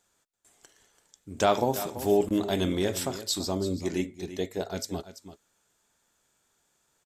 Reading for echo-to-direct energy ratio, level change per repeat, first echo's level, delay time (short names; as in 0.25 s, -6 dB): -13.0 dB, no steady repeat, -13.0 dB, 0.336 s